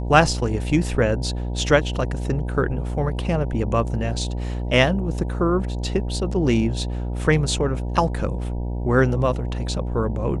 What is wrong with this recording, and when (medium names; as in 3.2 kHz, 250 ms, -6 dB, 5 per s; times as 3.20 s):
buzz 60 Hz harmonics 16 -26 dBFS